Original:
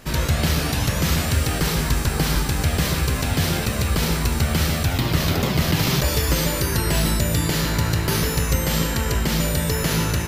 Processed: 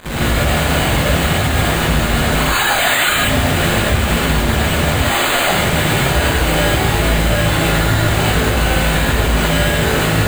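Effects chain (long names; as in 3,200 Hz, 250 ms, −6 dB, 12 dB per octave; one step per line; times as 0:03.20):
0:02.40–0:03.16: three sine waves on the formant tracks
0:04.97–0:05.50: high-pass filter 750 Hz 12 dB per octave
fuzz pedal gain 41 dB, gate −42 dBFS
bad sample-rate conversion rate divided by 8×, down none, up hold
reverb whose tail is shaped and stops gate 170 ms rising, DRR −8 dB
level −9 dB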